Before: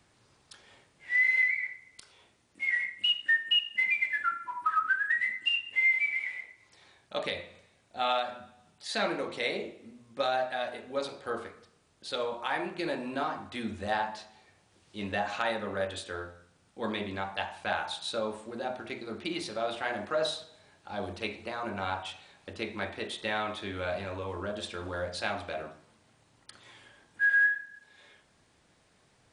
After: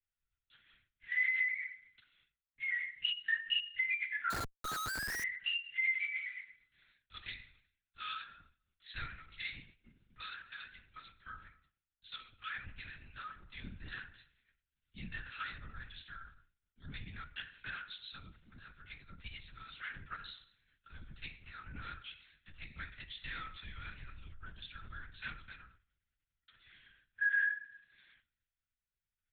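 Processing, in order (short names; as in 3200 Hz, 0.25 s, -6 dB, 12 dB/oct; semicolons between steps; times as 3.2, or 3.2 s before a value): 12.38–13.09 G.711 law mismatch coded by mu; compressor 1.5:1, threshold -52 dBFS, peak gain reduction 11 dB; brick-wall FIR band-stop 230–1200 Hz; expander -58 dBFS; LPC vocoder at 8 kHz whisper; 4.3–5.24 Schmitt trigger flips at -48.5 dBFS; three-band expander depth 40%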